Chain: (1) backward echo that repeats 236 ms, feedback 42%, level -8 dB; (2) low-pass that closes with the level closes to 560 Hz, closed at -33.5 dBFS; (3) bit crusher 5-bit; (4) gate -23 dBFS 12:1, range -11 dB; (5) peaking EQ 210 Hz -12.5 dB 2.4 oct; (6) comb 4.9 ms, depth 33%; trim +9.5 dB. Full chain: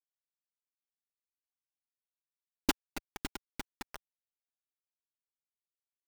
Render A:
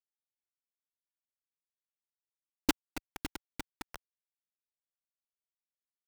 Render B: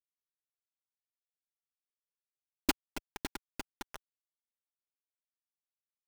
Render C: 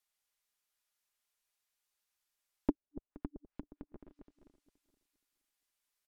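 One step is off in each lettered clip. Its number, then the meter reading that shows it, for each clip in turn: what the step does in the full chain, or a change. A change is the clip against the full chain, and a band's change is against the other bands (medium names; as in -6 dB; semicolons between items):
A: 6, 250 Hz band +2.0 dB; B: 2, 125 Hz band -2.0 dB; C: 3, distortion -8 dB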